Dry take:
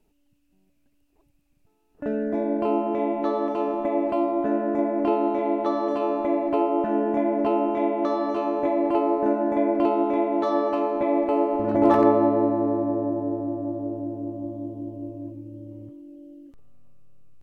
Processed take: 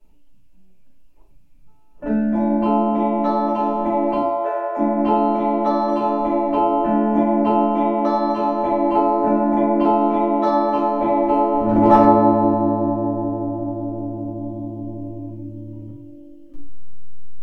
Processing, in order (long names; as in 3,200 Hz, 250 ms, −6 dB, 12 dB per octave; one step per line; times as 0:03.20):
0:04.18–0:04.77: linear-phase brick-wall high-pass 350 Hz
convolution reverb RT60 0.40 s, pre-delay 3 ms, DRR −8 dB
level −5.5 dB